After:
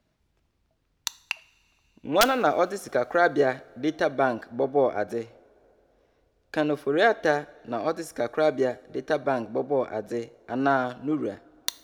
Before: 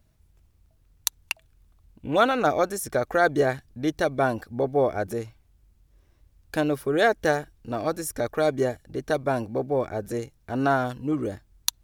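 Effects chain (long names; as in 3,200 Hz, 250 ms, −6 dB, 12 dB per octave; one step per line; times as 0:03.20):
three-way crossover with the lows and the highs turned down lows −14 dB, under 170 Hz, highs −14 dB, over 5,900 Hz
wrap-around overflow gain 7 dB
coupled-rooms reverb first 0.5 s, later 3.6 s, from −18 dB, DRR 17 dB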